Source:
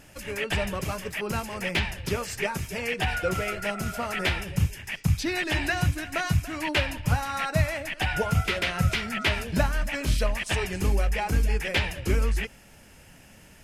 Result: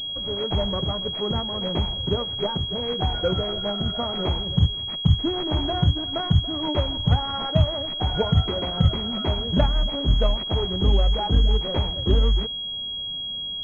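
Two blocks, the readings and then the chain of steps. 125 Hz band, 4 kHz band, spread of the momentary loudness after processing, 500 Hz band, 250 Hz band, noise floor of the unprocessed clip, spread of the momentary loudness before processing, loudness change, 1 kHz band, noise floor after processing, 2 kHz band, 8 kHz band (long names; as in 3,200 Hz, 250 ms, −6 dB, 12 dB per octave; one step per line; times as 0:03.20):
+5.0 dB, +10.5 dB, 5 LU, +4.0 dB, +5.0 dB, −52 dBFS, 5 LU, +4.0 dB, +0.5 dB, −31 dBFS, −13.5 dB, below −20 dB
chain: running median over 25 samples
switching amplifier with a slow clock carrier 3,300 Hz
level +5 dB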